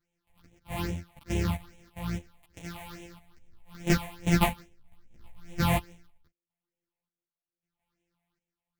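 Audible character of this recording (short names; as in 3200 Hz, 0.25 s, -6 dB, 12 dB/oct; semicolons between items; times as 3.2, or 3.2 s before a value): a buzz of ramps at a fixed pitch in blocks of 256 samples; phasing stages 6, 2.4 Hz, lowest notch 350–1300 Hz; chopped level 0.77 Hz, depth 65%, duty 45%; a shimmering, thickened sound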